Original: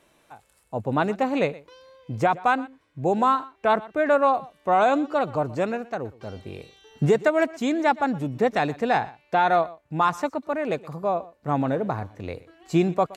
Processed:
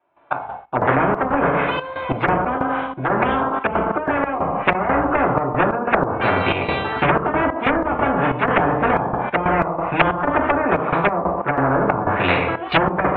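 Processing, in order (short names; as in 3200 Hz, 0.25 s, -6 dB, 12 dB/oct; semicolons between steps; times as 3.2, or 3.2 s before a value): wavefolder -19 dBFS; bell 950 Hz +13 dB 1.4 oct; AGC gain up to 15.5 dB; steep low-pass 3300 Hz 48 dB/oct; gate -41 dBFS, range -26 dB; reverb RT60 0.45 s, pre-delay 3 ms, DRR -5 dB; treble ducked by the level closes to 500 Hz, closed at 7 dBFS; 2.56–4.75 compressor, threshold -1 dBFS, peak gain reduction 8 dB; treble ducked by the level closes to 2000 Hz, closed at 6 dBFS; step gate ".x.x.xx.xxx" 92 bpm -12 dB; spectral compressor 4:1; gain -17.5 dB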